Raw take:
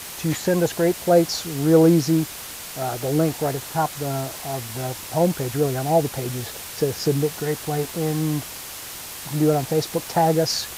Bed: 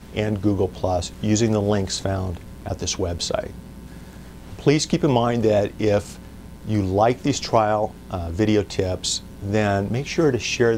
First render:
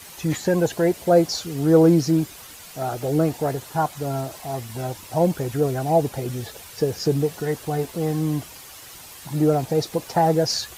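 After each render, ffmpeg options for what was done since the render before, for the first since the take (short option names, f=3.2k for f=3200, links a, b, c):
-af "afftdn=nr=9:nf=-36"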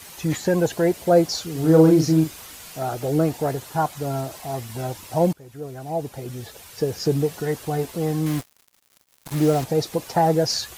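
-filter_complex "[0:a]asettb=1/sr,asplit=3[a][b][c];[a]atrim=end=1.514[d];[b]atrim=start=1.51:end=2.79,asetpts=PTS-STARTPTS,afade=t=in:d=0.004:c=qsin,afade=t=out:st=1.276:d=0.004:c=qsin,asplit=2[e][f];[f]adelay=38,volume=-5dB[g];[e][g]amix=inputs=2:normalize=0,atrim=end_sample=56448[h];[c]atrim=start=2.786[i];[d][h]acrossfade=d=0.004:c1=hsin:c2=qsin[j];[j][i]acrossfade=d=0.004:c1=qsin:c2=hsin,asettb=1/sr,asplit=3[k][l][m];[k]atrim=end=8.264[n];[l]atrim=start=8.26:end=9.64,asetpts=PTS-STARTPTS,afade=t=in:d=0.004:c=qsin,afade=t=out:st=1.376:d=0.004:c=qsin,acrusher=bits=4:mix=0:aa=0.5[o];[m]atrim=start=9.636[p];[n][o]acrossfade=d=0.004:c1=hsin:c2=qsin[q];[q][p]acrossfade=d=0.004:c1=qsin:c2=hsin,asplit=2[r][s];[r]atrim=end=5.33,asetpts=PTS-STARTPTS,afade=t=out:st=5.326:d=0.004:c=hsin:silence=0.0794328[t];[s]atrim=start=5.33,asetpts=PTS-STARTPTS,afade=t=in:d=1.81:silence=0.0794328[u];[t][u]concat=n=2:v=0:a=1"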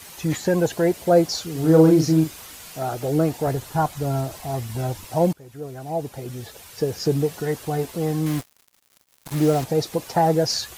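-filter_complex "[0:a]asettb=1/sr,asplit=3[a][b][c];[a]atrim=end=3.474[d];[b]atrim=start=3.47:end=5.05,asetpts=PTS-STARTPTS,afade=t=in:d=0.004:c=qsin,afade=t=out:st=1.576:d=0.004:c=qsin,lowshelf=f=100:g=12[e];[c]atrim=start=5.046[f];[d][e]acrossfade=d=0.004:c1=hsin:c2=qsin[g];[g][f]acrossfade=d=0.004:c1=qsin:c2=hsin"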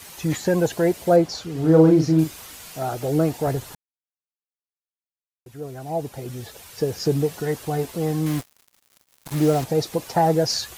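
-filter_complex "[0:a]asettb=1/sr,asplit=3[a][b][c];[a]atrim=end=1.164[d];[b]atrim=start=1.16:end=2.19,asetpts=PTS-STARTPTS,afade=t=in:d=0.004:c=qsin,afade=t=out:st=1.026:d=0.004:c=qsin,lowpass=f=3.1k:p=1[e];[c]atrim=start=2.186[f];[d][e]acrossfade=d=0.004:c1=hsin:c2=qsin[g];[g][f]acrossfade=d=0.004:c1=qsin:c2=hsin,asplit=3[h][i][j];[h]atrim=end=3.75,asetpts=PTS-STARTPTS,afade=t=out:st=3.746:d=0.004:c=hsin[k];[i]atrim=start=3.75:end=5.46,asetpts=PTS-STARTPTS,volume=0[l];[j]atrim=start=5.46,asetpts=PTS-STARTPTS,afade=t=in:d=0.004:c=hsin[m];[k][l][m]concat=n=3:v=0:a=1"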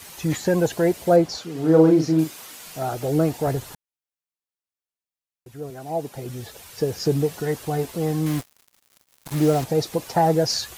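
-filter_complex "[0:a]asettb=1/sr,asplit=3[a][b][c];[a]atrim=end=1.394[d];[b]atrim=start=1.39:end=2.66,asetpts=PTS-STARTPTS,afade=t=in:d=0.004:c=qsin,afade=t=out:st=1.266:d=0.004:c=qsin,highpass=180[e];[c]atrim=start=2.656[f];[d][e]acrossfade=d=0.004:c1=hsin:c2=qsin[g];[g][f]acrossfade=d=0.004:c1=qsin:c2=hsin,asettb=1/sr,asplit=3[h][i][j];[h]atrim=end=5.704[k];[i]atrim=start=5.7:end=6.15,asetpts=PTS-STARTPTS,afade=t=in:d=0.004:c=qsin,afade=t=out:st=0.446:d=0.004:c=qsin,highpass=160[l];[j]atrim=start=6.146[m];[k][l]acrossfade=d=0.004:c1=hsin:c2=qsin[n];[n][m]acrossfade=d=0.004:c1=qsin:c2=hsin"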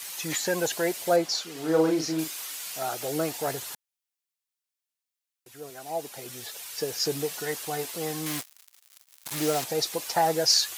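-af "highpass=f=470:p=1,tiltshelf=f=1.4k:g=-5"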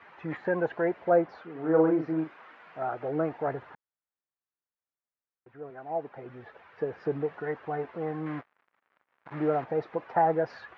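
-af "lowpass=f=1.7k:w=0.5412,lowpass=f=1.7k:w=1.3066"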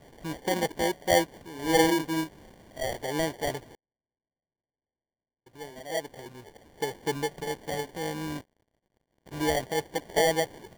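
-af "acrusher=samples=34:mix=1:aa=0.000001"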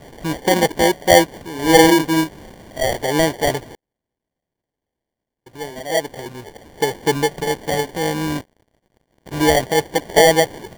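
-af "volume=12dB,alimiter=limit=-2dB:level=0:latency=1"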